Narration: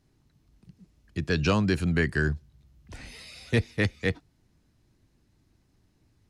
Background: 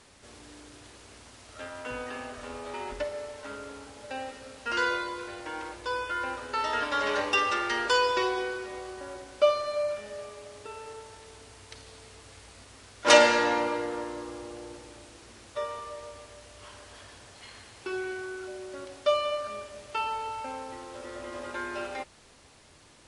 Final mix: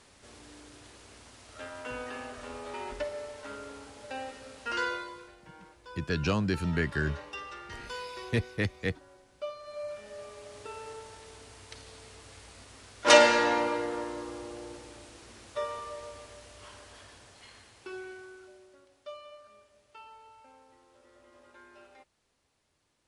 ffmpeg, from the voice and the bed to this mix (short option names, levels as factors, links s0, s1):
-filter_complex "[0:a]adelay=4800,volume=0.596[s0];[1:a]volume=4.73,afade=t=out:st=4.63:d=0.74:silence=0.199526,afade=t=in:st=9.58:d=1.03:silence=0.16788,afade=t=out:st=16.33:d=2.49:silence=0.112202[s1];[s0][s1]amix=inputs=2:normalize=0"